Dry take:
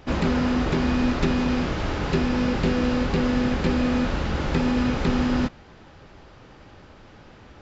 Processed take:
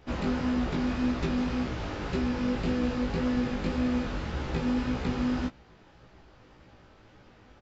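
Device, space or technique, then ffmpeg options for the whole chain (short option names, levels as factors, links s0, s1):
double-tracked vocal: -filter_complex "[0:a]asplit=2[s0][s1];[s1]adelay=16,volume=0.211[s2];[s0][s2]amix=inputs=2:normalize=0,flanger=delay=15.5:depth=4.5:speed=1.8,volume=0.562"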